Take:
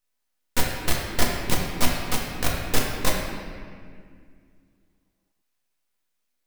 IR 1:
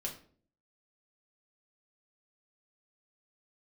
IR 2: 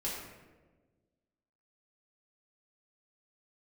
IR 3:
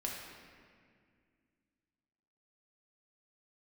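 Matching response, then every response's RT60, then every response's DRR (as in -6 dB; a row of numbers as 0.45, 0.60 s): 3; 0.50, 1.3, 2.1 s; -1.5, -6.5, -2.5 dB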